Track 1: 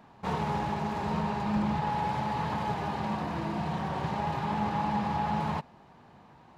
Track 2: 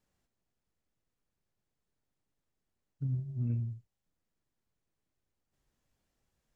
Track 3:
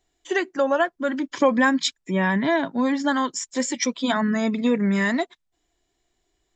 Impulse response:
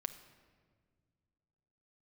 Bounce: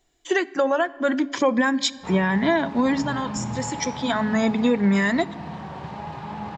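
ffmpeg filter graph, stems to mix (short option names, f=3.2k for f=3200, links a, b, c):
-filter_complex "[0:a]lowpass=7.1k,adelay=1800,volume=-3dB[a];[1:a]volume=-1.5dB,asplit=2[b][c];[2:a]bandreject=f=70.16:t=h:w=4,bandreject=f=140.32:t=h:w=4,bandreject=f=210.48:t=h:w=4,bandreject=f=280.64:t=h:w=4,volume=1dB,asplit=2[d][e];[e]volume=-5.5dB[f];[c]apad=whole_len=289179[g];[d][g]sidechaincompress=threshold=-53dB:ratio=8:attack=16:release=569[h];[3:a]atrim=start_sample=2205[i];[f][i]afir=irnorm=-1:irlink=0[j];[a][b][h][j]amix=inputs=4:normalize=0,alimiter=limit=-11dB:level=0:latency=1:release=281"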